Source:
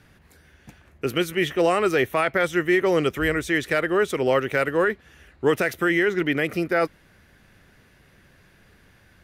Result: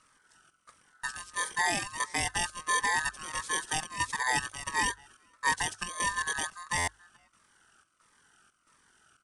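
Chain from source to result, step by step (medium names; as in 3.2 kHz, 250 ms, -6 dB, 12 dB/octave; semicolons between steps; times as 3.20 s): bit-reversed sample order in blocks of 16 samples; echo from a far wall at 74 m, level -24 dB; square tremolo 1.5 Hz, depth 65%, duty 75%; peaking EQ 7.5 kHz +8 dB 0.77 oct; ring modulator 1.4 kHz; 1.05–1.51 s: band-stop 1.1 kHz, Q 7.7; resampled via 22.05 kHz; hum notches 50/100 Hz; buffer glitch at 6.77 s, samples 512, times 8; Shepard-style phaser falling 1.5 Hz; trim -3.5 dB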